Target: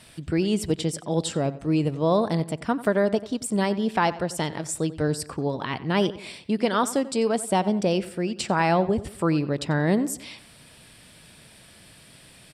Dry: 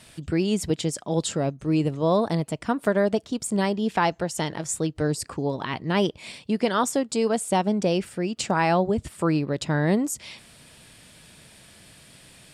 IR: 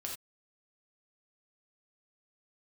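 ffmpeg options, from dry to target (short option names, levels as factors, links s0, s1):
-filter_complex "[0:a]equalizer=f=6700:w=7.7:g=-8.5,asplit=2[s0][s1];[s1]adelay=91,lowpass=f=3400:p=1,volume=0.158,asplit=2[s2][s3];[s3]adelay=91,lowpass=f=3400:p=1,volume=0.43,asplit=2[s4][s5];[s5]adelay=91,lowpass=f=3400:p=1,volume=0.43,asplit=2[s6][s7];[s7]adelay=91,lowpass=f=3400:p=1,volume=0.43[s8];[s2][s4][s6][s8]amix=inputs=4:normalize=0[s9];[s0][s9]amix=inputs=2:normalize=0"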